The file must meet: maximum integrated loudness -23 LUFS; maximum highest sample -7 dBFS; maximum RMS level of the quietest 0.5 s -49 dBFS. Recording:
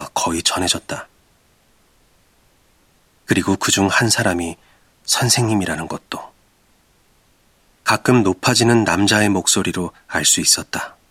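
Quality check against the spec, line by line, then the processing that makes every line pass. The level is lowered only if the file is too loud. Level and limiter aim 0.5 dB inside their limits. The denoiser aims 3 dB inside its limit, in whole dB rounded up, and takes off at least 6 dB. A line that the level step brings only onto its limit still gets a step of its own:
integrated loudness -16.5 LUFS: fail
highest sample -1.5 dBFS: fail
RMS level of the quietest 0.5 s -57 dBFS: OK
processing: gain -7 dB

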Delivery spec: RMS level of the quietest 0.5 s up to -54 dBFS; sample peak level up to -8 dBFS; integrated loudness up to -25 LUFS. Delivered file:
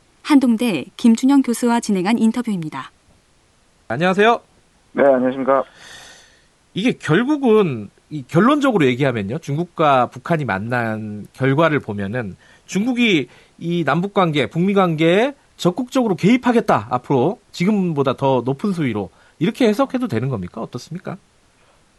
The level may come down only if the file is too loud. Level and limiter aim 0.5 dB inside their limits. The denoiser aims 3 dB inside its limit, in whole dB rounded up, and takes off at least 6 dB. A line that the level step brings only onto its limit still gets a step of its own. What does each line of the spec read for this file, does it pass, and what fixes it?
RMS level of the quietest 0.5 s -56 dBFS: OK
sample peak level -2.5 dBFS: fail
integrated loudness -18.0 LUFS: fail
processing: gain -7.5 dB

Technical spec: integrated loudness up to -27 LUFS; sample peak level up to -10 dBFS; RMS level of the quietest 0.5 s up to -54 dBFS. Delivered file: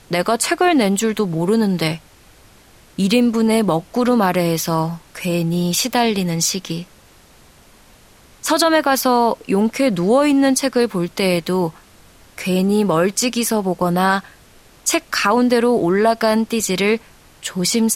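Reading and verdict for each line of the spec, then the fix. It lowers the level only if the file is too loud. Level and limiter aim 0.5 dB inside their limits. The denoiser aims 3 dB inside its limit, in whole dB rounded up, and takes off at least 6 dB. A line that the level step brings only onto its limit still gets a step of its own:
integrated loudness -17.5 LUFS: fail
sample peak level -4.5 dBFS: fail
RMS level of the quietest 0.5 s -48 dBFS: fail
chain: gain -10 dB

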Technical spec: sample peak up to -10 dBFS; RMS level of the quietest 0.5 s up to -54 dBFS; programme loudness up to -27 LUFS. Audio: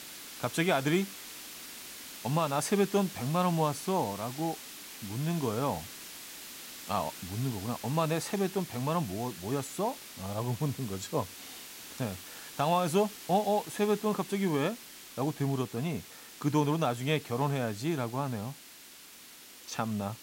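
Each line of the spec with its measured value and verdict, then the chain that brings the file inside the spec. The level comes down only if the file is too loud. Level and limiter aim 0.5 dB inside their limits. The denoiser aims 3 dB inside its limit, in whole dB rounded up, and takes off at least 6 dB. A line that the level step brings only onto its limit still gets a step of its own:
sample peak -15.0 dBFS: OK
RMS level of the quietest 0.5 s -52 dBFS: fail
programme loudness -32.0 LUFS: OK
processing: denoiser 6 dB, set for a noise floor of -52 dBFS

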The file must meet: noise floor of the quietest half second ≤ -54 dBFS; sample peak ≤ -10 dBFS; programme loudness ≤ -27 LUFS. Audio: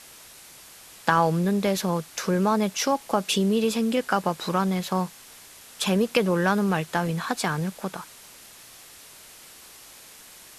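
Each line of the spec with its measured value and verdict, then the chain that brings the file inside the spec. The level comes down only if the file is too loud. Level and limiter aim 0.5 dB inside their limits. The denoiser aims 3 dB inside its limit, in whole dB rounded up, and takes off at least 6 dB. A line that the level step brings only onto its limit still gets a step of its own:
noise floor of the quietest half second -48 dBFS: fail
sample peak -6.0 dBFS: fail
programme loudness -25.0 LUFS: fail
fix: denoiser 7 dB, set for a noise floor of -48 dBFS; gain -2.5 dB; limiter -10.5 dBFS

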